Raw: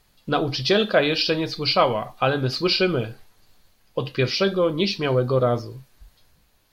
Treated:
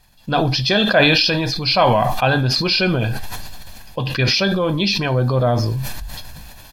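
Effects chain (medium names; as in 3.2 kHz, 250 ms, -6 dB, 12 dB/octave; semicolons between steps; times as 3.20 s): comb 1.2 ms, depth 53%; decay stretcher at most 22 dB/s; trim +2.5 dB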